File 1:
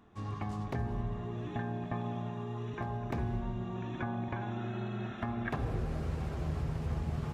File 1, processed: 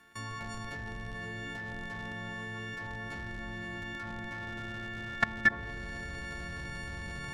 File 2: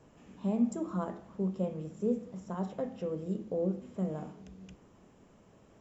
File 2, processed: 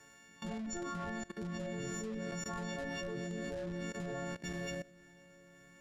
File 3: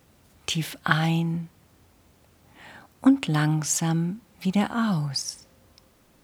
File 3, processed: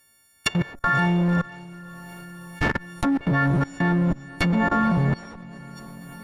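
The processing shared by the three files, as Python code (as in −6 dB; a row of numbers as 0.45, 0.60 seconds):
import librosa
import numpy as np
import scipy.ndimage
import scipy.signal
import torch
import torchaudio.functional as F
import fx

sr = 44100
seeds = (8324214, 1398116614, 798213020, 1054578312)

p1 = fx.freq_snap(x, sr, grid_st=4)
p2 = fx.leveller(p1, sr, passes=1)
p3 = fx.peak_eq(p2, sr, hz=1700.0, db=13.0, octaves=0.65)
p4 = fx.schmitt(p3, sr, flips_db=-24.0)
p5 = p3 + (p4 * 10.0 ** (-3.0 / 20.0))
p6 = fx.env_lowpass_down(p5, sr, base_hz=940.0, full_db=-15.0)
p7 = fx.high_shelf(p6, sr, hz=3200.0, db=9.0)
p8 = p7 + fx.echo_diffused(p7, sr, ms=509, feedback_pct=58, wet_db=-13, dry=0)
y = fx.level_steps(p8, sr, step_db=20)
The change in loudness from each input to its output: +0.5, −5.5, +2.0 LU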